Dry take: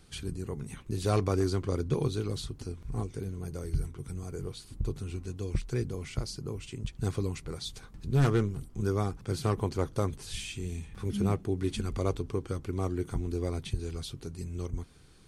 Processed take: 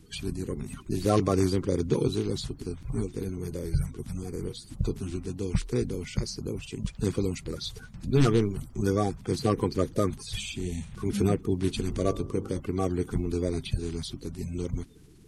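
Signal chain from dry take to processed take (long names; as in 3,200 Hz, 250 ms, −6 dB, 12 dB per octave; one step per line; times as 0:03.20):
spectral magnitudes quantised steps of 30 dB
0:11.71–0:12.60: hum removal 50.71 Hz, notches 25
level +4 dB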